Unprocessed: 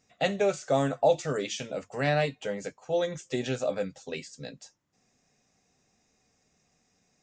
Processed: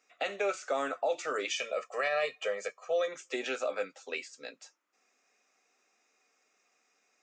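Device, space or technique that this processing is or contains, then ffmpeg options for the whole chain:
laptop speaker: -filter_complex "[0:a]asettb=1/sr,asplit=3[link_01][link_02][link_03];[link_01]atrim=end=1.504[link_04];[link_02]atrim=start=1.5:end=3.08,asetpts=PTS-STARTPTS,afade=type=in:duration=0.004:curve=qsin,afade=type=out:start_time=1.576:duration=0.004:curve=qsin,aecho=1:1:1.7:0.9,atrim=end_sample=69678[link_05];[link_03]atrim=start=3.076[link_06];[link_04][link_05]acrossfade=duration=0.004:curve1=hsin:curve2=qsin[link_07];[link_07][link_06]acrossfade=duration=0.004:curve1=qsin:curve2=hsin,highpass=frequency=320:width=0.5412,highpass=frequency=320:width=1.3066,equalizer=frequency=1300:width_type=o:width=0.51:gain=10.5,equalizer=frequency=2400:width_type=o:width=0.49:gain=8,alimiter=limit=-18dB:level=0:latency=1:release=98,volume=-3.5dB"

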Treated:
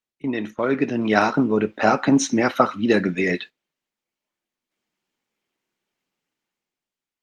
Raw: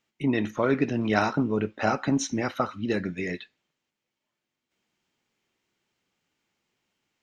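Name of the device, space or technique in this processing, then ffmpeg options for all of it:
video call: -filter_complex "[0:a]asettb=1/sr,asplit=3[link_01][link_02][link_03];[link_01]atrim=end=2.014[link_04];[link_02]atrim=start=2.01:end=3.23,asetpts=PTS-STARTPTS,afade=type=in:duration=0.004:curve=qsin,afade=type=out:start_time=1.216:duration=0.004:curve=qsin,highpass=71[link_05];[link_03]atrim=start=3.226[link_06];[link_04][link_05]acrossfade=duration=0.004:curve1=hsin:curve2=qsin[link_07];[link_07][link_06]acrossfade=duration=0.004:curve1=qsin:curve2=hsin,highpass=170,dynaudnorm=framelen=100:gausssize=17:maxgain=14dB,agate=range=-15dB:threshold=-35dB:ratio=16:detection=peak" -ar 48000 -c:a libopus -b:a 32k

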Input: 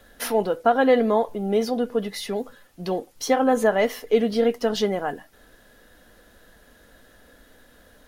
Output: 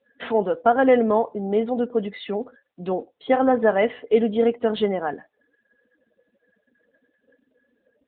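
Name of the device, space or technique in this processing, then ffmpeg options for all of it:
mobile call with aggressive noise cancelling: -af "highpass=140,afftdn=noise_reduction=36:noise_floor=-44,volume=1.5dB" -ar 8000 -c:a libopencore_amrnb -b:a 10200

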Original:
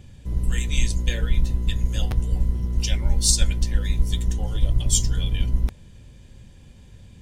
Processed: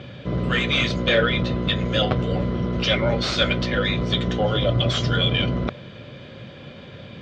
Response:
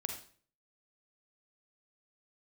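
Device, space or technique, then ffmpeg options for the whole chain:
overdrive pedal into a guitar cabinet: -filter_complex "[0:a]asplit=2[link_01][link_02];[link_02]highpass=frequency=720:poles=1,volume=27dB,asoftclip=type=tanh:threshold=-4dB[link_03];[link_01][link_03]amix=inputs=2:normalize=0,lowpass=frequency=7000:poles=1,volume=-6dB,highpass=99,equalizer=frequency=130:width_type=q:width=4:gain=6,equalizer=frequency=580:width_type=q:width=4:gain=6,equalizer=frequency=890:width_type=q:width=4:gain=-9,equalizer=frequency=1300:width_type=q:width=4:gain=4,equalizer=frequency=1800:width_type=q:width=4:gain=-6,equalizer=frequency=2700:width_type=q:width=4:gain=-6,lowpass=frequency=3400:width=0.5412,lowpass=frequency=3400:width=1.3066"

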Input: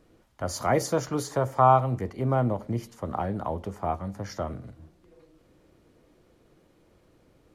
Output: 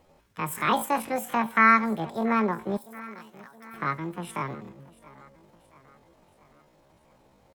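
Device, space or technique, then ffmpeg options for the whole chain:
chipmunk voice: -filter_complex "[0:a]asettb=1/sr,asplit=3[link_01][link_02][link_03];[link_01]atrim=end=2.784[link_04];[link_02]atrim=start=2.78:end=3.75,asetpts=PTS-STARTPTS,afade=type=in:duration=0.004:curve=qsin,afade=type=out:start_time=0.966:duration=0.004:curve=qsin,aderivative[link_05];[link_03]atrim=start=3.746[link_06];[link_04][link_05]acrossfade=duration=0.004:curve1=hsin:curve2=qsin[link_07];[link_07][link_06]acrossfade=duration=0.004:curve1=qsin:curve2=hsin,aecho=1:1:678|1356|2034|2712:0.1|0.054|0.0292|0.0157,asetrate=76340,aresample=44100,atempo=0.577676"

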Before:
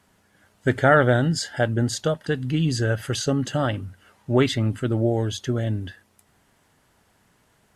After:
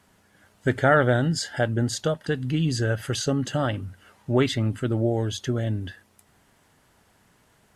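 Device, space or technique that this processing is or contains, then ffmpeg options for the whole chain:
parallel compression: -filter_complex "[0:a]asplit=2[link_01][link_02];[link_02]acompressor=threshold=-31dB:ratio=6,volume=-4dB[link_03];[link_01][link_03]amix=inputs=2:normalize=0,volume=-3dB"

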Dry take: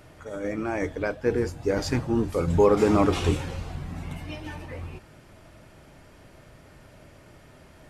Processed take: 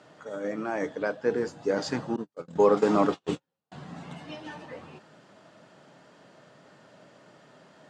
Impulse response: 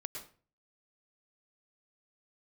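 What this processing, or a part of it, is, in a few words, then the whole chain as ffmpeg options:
television speaker: -filter_complex "[0:a]asettb=1/sr,asplit=3[link_01][link_02][link_03];[link_01]atrim=end=2.164[link_04];[link_02]atrim=start=2.16:end=3.72,asetpts=PTS-STARTPTS,afade=type=in:duration=0.004:curve=qsin,afade=type=out:start_time=1.556:duration=0.004:curve=qsin,agate=range=-47dB:threshold=-21dB:ratio=16:detection=peak[link_05];[link_03]atrim=start=3.716[link_06];[link_04][link_05]acrossfade=duration=0.004:curve1=hsin:curve2=qsin[link_07];[link_07][link_06]acrossfade=duration=0.004:curve1=qsin:curve2=hsin,highpass=frequency=170:width=0.5412,highpass=frequency=170:width=1.3066,equalizer=frequency=250:width_type=q:width=4:gain=-3,equalizer=frequency=350:width_type=q:width=4:gain=-5,equalizer=frequency=2300:width_type=q:width=4:gain=-8,equalizer=frequency=5600:width_type=q:width=4:gain=-4,lowpass=frequency=7200:width=0.5412,lowpass=frequency=7200:width=1.3066"

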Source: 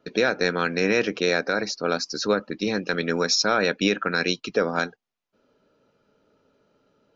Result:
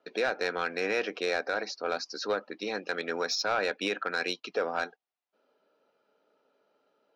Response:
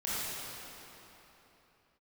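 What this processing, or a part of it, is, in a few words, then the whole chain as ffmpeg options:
intercom: -af "highpass=390,lowpass=4900,equalizer=frequency=750:width_type=o:width=0.41:gain=5.5,asoftclip=type=tanh:threshold=-13.5dB,volume=-5dB"

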